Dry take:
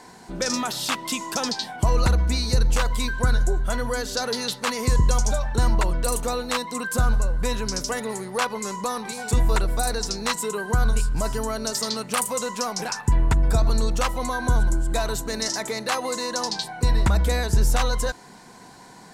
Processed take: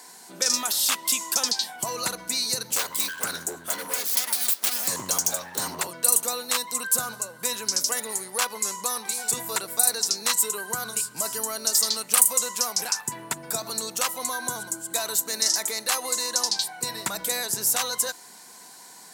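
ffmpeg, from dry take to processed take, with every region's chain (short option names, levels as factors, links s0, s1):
-filter_complex "[0:a]asettb=1/sr,asplit=3[s0][s1][s2];[s0]atrim=end=2.714[s3];[s1]atrim=start=2.71:end=5.88,asetpts=PTS-STARTPTS,afade=t=in:d=0.004:c=qsin,afade=t=out:st=3.166:d=0.004:c=qsin,asubboost=boost=2.5:cutoff=66,aeval=exprs='abs(val(0))':c=same[s4];[s2]atrim=start=5.876[s5];[s3][s4]acrossfade=d=0.004:c1=hsin:c2=qsin[s6];[s6][s5]acrossfade=d=0.004:c1=qsin:c2=hsin,highpass=f=130:w=0.5412,highpass=f=130:w=1.3066,aemphasis=mode=production:type=riaa,volume=0.596"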